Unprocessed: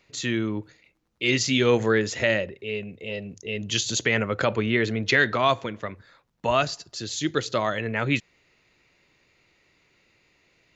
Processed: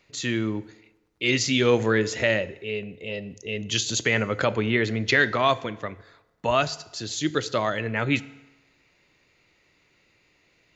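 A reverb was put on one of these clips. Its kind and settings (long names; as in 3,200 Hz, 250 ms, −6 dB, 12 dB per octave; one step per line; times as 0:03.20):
feedback delay network reverb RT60 1.1 s, low-frequency decay 0.8×, high-frequency decay 0.8×, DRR 16 dB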